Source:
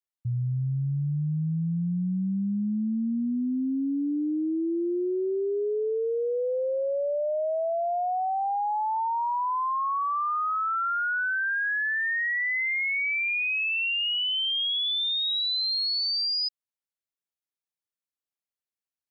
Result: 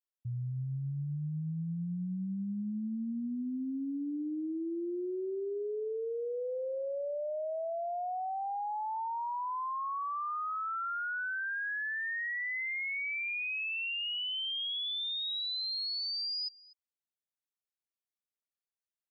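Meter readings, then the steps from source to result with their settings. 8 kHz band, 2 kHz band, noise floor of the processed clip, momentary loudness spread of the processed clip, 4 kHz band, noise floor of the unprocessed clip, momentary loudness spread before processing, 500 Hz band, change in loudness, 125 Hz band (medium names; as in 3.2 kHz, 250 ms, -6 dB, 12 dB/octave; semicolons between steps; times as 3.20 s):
no reading, -8.5 dB, under -85 dBFS, 4 LU, -8.5 dB, under -85 dBFS, 4 LU, -8.5 dB, -8.5 dB, -8.5 dB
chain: delay 245 ms -22 dB; trim -8.5 dB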